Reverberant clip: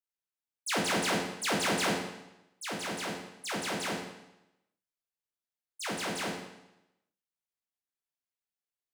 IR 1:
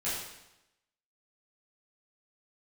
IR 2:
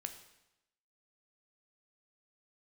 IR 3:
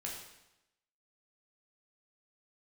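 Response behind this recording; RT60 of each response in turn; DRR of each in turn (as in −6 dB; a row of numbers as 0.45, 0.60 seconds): 3; 0.90, 0.90, 0.90 seconds; −11.5, 6.5, −3.0 decibels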